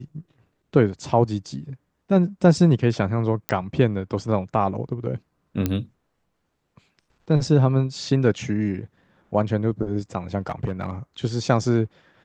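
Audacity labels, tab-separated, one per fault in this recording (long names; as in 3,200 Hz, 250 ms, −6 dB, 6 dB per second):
3.490000	3.490000	click −8 dBFS
5.660000	5.660000	click −9 dBFS
10.490000	10.910000	clipping −19.5 dBFS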